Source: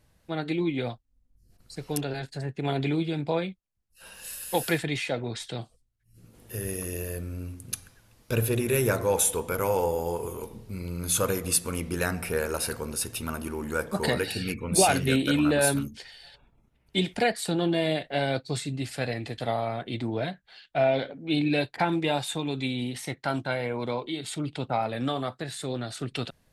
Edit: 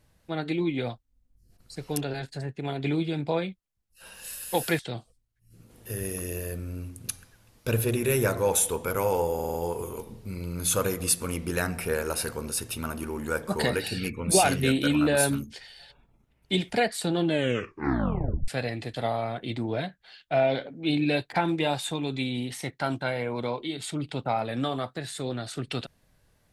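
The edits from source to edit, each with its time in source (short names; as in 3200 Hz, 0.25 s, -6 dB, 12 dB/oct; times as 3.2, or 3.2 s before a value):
2.34–2.84 fade out linear, to -6 dB
4.79–5.43 cut
9.98 stutter 0.05 s, 5 plays
17.69 tape stop 1.23 s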